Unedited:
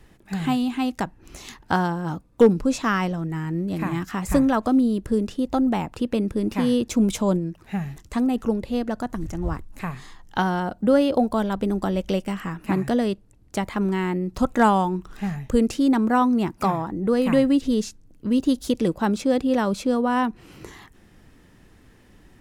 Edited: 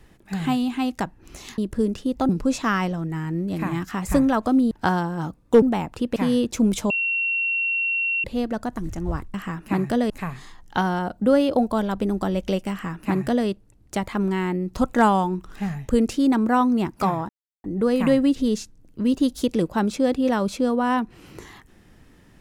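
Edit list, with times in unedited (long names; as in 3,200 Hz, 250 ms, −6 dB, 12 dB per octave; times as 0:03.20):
0:01.58–0:02.49: swap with 0:04.91–0:05.62
0:06.16–0:06.53: remove
0:07.27–0:08.61: beep over 2,730 Hz −20.5 dBFS
0:12.32–0:13.08: duplicate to 0:09.71
0:16.90: splice in silence 0.35 s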